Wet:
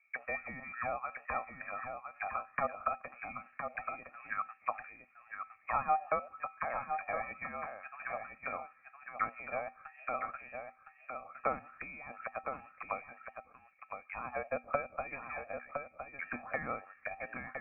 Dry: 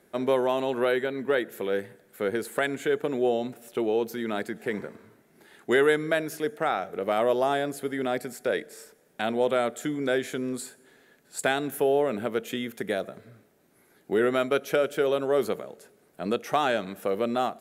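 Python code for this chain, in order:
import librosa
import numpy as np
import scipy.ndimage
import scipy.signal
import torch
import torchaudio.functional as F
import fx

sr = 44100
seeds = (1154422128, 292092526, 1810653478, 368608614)

y = fx.low_shelf(x, sr, hz=440.0, db=-8.5)
y = fx.hum_notches(y, sr, base_hz=50, count=10)
y = y + 0.7 * np.pad(y, (int(1.8 * sr / 1000.0), 0))[:len(y)]
y = fx.transient(y, sr, attack_db=6, sustain_db=-2)
y = fx.auto_wah(y, sr, base_hz=660.0, top_hz=2300.0, q=5.0, full_db=-22.0, direction='up')
y = fx.comb_fb(y, sr, f0_hz=530.0, decay_s=0.21, harmonics='all', damping=0.0, mix_pct=70)
y = y + 10.0 ** (-6.5 / 20.0) * np.pad(y, (int(1012 * sr / 1000.0), 0))[:len(y)]
y = fx.freq_invert(y, sr, carrier_hz=2900)
y = y * librosa.db_to_amplitude(9.5)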